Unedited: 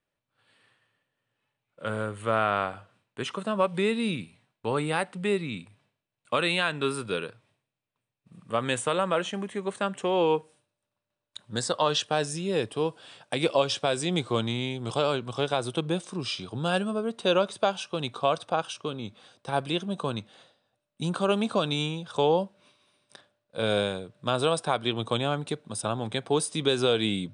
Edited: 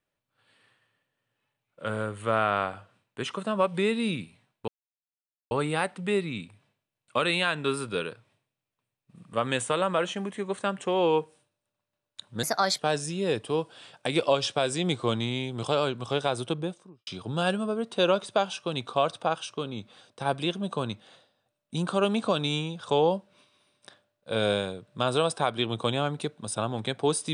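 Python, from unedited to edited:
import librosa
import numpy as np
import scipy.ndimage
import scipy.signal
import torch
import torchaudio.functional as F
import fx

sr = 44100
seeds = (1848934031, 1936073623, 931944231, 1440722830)

y = fx.studio_fade_out(x, sr, start_s=15.66, length_s=0.68)
y = fx.edit(y, sr, fx.insert_silence(at_s=4.68, length_s=0.83),
    fx.speed_span(start_s=11.6, length_s=0.46, speed=1.28), tone=tone)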